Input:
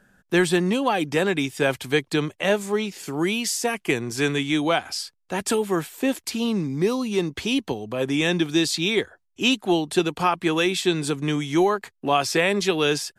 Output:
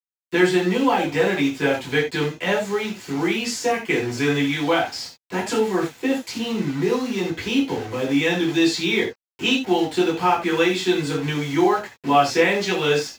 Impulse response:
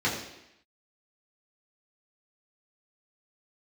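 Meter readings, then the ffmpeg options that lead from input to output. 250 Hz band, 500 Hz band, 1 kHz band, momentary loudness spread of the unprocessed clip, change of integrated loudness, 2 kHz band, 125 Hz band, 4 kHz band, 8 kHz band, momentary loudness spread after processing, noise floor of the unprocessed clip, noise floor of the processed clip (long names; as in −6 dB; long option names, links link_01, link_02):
+2.0 dB, +2.0 dB, +3.5 dB, 5 LU, +2.0 dB, +2.5 dB, +0.5 dB, 0.0 dB, −3.0 dB, 7 LU, −70 dBFS, below −85 dBFS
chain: -filter_complex "[0:a]acrossover=split=360|3000[link_01][link_02][link_03];[link_01]acompressor=threshold=-35dB:ratio=2[link_04];[link_04][link_02][link_03]amix=inputs=3:normalize=0,acrusher=bits=5:mix=0:aa=0.000001[link_05];[1:a]atrim=start_sample=2205,atrim=end_sample=4410[link_06];[link_05][link_06]afir=irnorm=-1:irlink=0,volume=-9dB"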